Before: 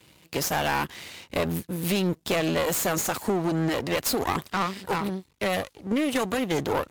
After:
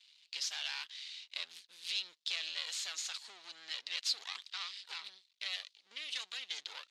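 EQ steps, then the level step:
four-pole ladder band-pass 4,700 Hz, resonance 45%
high-frequency loss of the air 54 metres
high-shelf EQ 4,000 Hz −7 dB
+11.0 dB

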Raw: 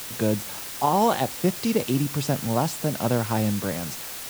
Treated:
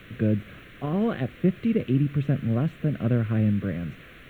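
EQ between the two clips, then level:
high-frequency loss of the air 360 metres
low-shelf EQ 200 Hz +5.5 dB
phaser with its sweep stopped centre 2,100 Hz, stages 4
0.0 dB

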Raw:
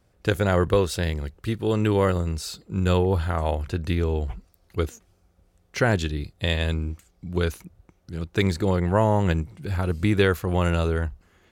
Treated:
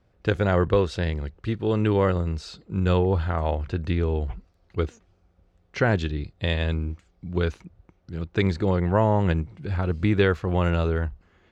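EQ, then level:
high-frequency loss of the air 140 metres
0.0 dB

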